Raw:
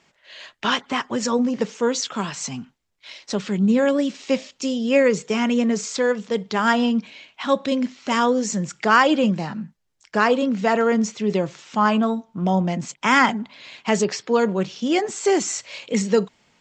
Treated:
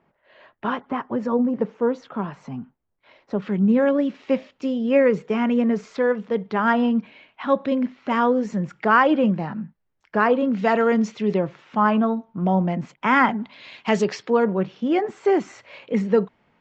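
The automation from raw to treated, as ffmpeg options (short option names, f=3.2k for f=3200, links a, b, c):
-af "asetnsamples=n=441:p=0,asendcmd='3.42 lowpass f 1900;10.53 lowpass f 3500;11.34 lowpass f 2000;13.42 lowpass f 3900;14.3 lowpass f 1800',lowpass=1.1k"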